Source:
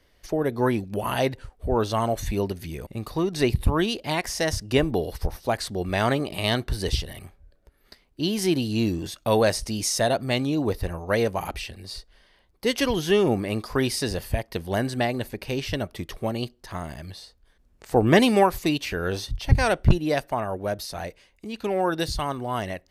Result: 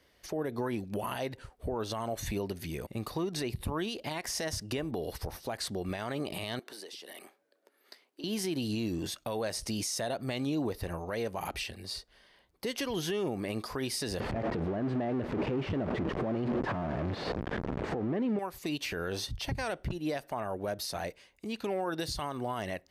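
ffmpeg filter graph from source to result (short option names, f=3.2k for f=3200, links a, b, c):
-filter_complex "[0:a]asettb=1/sr,asplit=3[a][b][c];[a]atrim=end=6.594[d];[b]atrim=start=6.59:end=8.24,asetpts=PTS-STARTPTS,afade=t=in:d=0.004:c=qsin,afade=t=out:st=1.646:d=0.004:c=qsin,highpass=f=290:w=0.5412,highpass=f=290:w=1.3066,acompressor=threshold=-40dB:ratio=16:attack=3.2:release=140:knee=1:detection=peak[e];[c]atrim=start=8.236[f];[d][e]acrossfade=d=0.004:c1=hsin:c2=qsin[g];[g][f]acrossfade=d=0.004:c1=qsin:c2=hsin,asettb=1/sr,asplit=3[h][i][j];[h]atrim=end=14.204[k];[i]atrim=start=14.2:end=18.39,asetpts=PTS-STARTPTS,afade=t=in:d=0.004:c=qsin,afade=t=out:st=4.186:d=0.004:c=qsin,aeval=exprs='val(0)+0.5*0.126*sgn(val(0))':c=same,lowpass=2k,equalizer=f=250:w=0.33:g=11[l];[j]atrim=start=18.386[m];[k][l]acrossfade=d=0.004:c1=hsin:c2=qsin[n];[n][m]acrossfade=d=0.004:c1=qsin:c2=hsin,highpass=f=120:p=1,acompressor=threshold=-26dB:ratio=5,alimiter=limit=-23dB:level=0:latency=1:release=54,volume=-1.5dB"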